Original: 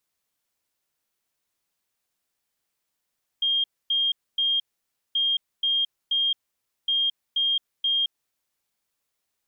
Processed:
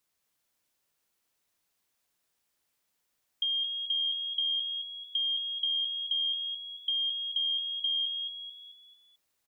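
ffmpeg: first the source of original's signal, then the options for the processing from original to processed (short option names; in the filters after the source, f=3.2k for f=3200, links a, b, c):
-f lavfi -i "aevalsrc='0.1*sin(2*PI*3220*t)*clip(min(mod(mod(t,1.73),0.48),0.22-mod(mod(t,1.73),0.48))/0.005,0,1)*lt(mod(t,1.73),1.44)':d=5.19:s=44100"
-filter_complex "[0:a]acompressor=threshold=-29dB:ratio=6,asplit=2[a][b];[b]asplit=5[c][d][e][f][g];[c]adelay=220,afreqshift=40,volume=-5dB[h];[d]adelay=440,afreqshift=80,volume=-12.1dB[i];[e]adelay=660,afreqshift=120,volume=-19.3dB[j];[f]adelay=880,afreqshift=160,volume=-26.4dB[k];[g]adelay=1100,afreqshift=200,volume=-33.5dB[l];[h][i][j][k][l]amix=inputs=5:normalize=0[m];[a][m]amix=inputs=2:normalize=0"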